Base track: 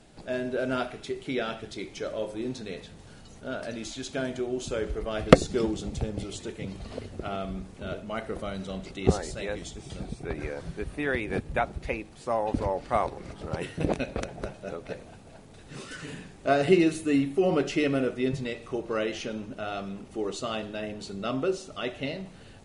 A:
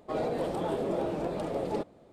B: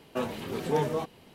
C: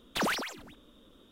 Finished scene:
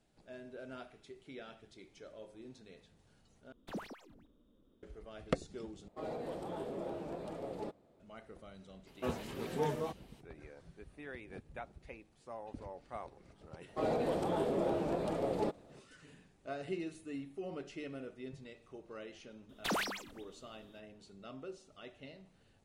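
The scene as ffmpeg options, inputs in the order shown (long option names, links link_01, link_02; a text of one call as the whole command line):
ffmpeg -i bed.wav -i cue0.wav -i cue1.wav -i cue2.wav -filter_complex "[3:a]asplit=2[link_01][link_02];[1:a]asplit=2[link_03][link_04];[0:a]volume=-19dB[link_05];[link_01]tiltshelf=frequency=850:gain=8[link_06];[link_05]asplit=3[link_07][link_08][link_09];[link_07]atrim=end=3.524[link_10];[link_06]atrim=end=1.31,asetpts=PTS-STARTPTS,volume=-16dB[link_11];[link_08]atrim=start=4.826:end=5.884[link_12];[link_03]atrim=end=2.12,asetpts=PTS-STARTPTS,volume=-10.5dB[link_13];[link_09]atrim=start=7.996[link_14];[2:a]atrim=end=1.34,asetpts=PTS-STARTPTS,volume=-7.5dB,afade=type=in:duration=0.004:curve=hsin,afade=type=out:start_time=1.336:duration=0.004:curve=hsin,adelay=8870[link_15];[link_04]atrim=end=2.12,asetpts=PTS-STARTPTS,volume=-2.5dB,afade=type=in:duration=0.004:curve=hsin,afade=type=out:start_time=2.116:duration=0.004:curve=hsin,adelay=13680[link_16];[link_02]atrim=end=1.31,asetpts=PTS-STARTPTS,volume=-5dB,afade=type=in:duration=0.004:curve=hsin,afade=type=out:start_time=1.306:duration=0.004:curve=hsin,adelay=19490[link_17];[link_10][link_11]acrossfade=duration=0.004:curve1=hsin:curve2=hsin[link_18];[link_18][link_12]acrossfade=duration=0.004:curve1=hsin:curve2=hsin[link_19];[link_19][link_13]acrossfade=duration=0.004:curve1=hsin:curve2=hsin[link_20];[link_20][link_14]acrossfade=duration=0.004:curve1=hsin:curve2=hsin[link_21];[link_21][link_15][link_16][link_17]amix=inputs=4:normalize=0" out.wav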